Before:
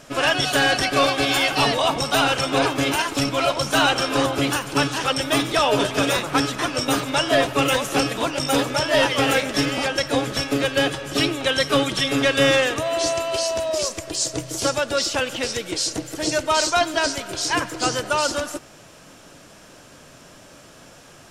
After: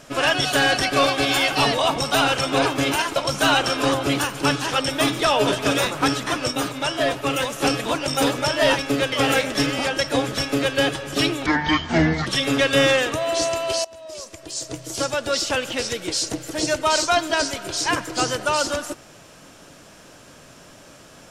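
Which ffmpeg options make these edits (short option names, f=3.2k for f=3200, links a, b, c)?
-filter_complex "[0:a]asplit=9[a][b][c][d][e][f][g][h][i];[a]atrim=end=3.162[j];[b]atrim=start=3.478:end=6.832[k];[c]atrim=start=6.828:end=7.932,asetpts=PTS-STARTPTS,volume=-3.5dB[l];[d]atrim=start=7.928:end=9.112[m];[e]atrim=start=10.408:end=10.742[n];[f]atrim=start=9.108:end=11.454[o];[g]atrim=start=11.45:end=11.91,asetpts=PTS-STARTPTS,asetrate=25137,aresample=44100,atrim=end_sample=35589,asetpts=PTS-STARTPTS[p];[h]atrim=start=11.906:end=13.49,asetpts=PTS-STARTPTS,afade=t=out:st=1.58:d=0.004:c=hsin:silence=0.0749894[q];[i]atrim=start=13.49,asetpts=PTS-STARTPTS,afade=t=in:d=1.62:silence=0.0749894[r];[j][k]acrossfade=d=0.004:c1=hsin:c2=hsin[s];[s][l]acrossfade=d=0.004:c1=hsin:c2=hsin[t];[t][m]acrossfade=d=0.004:c1=hsin:c2=hsin[u];[u][n]acrossfade=d=0.004:c1=hsin:c2=hsin[v];[v][o]acrossfade=d=0.004:c1=hsin:c2=hsin[w];[w][p]acrossfade=d=0.004:c1=hsin:c2=hsin[x];[q][r]concat=n=2:v=0:a=1[y];[x][y]acrossfade=d=0.004:c1=hsin:c2=hsin"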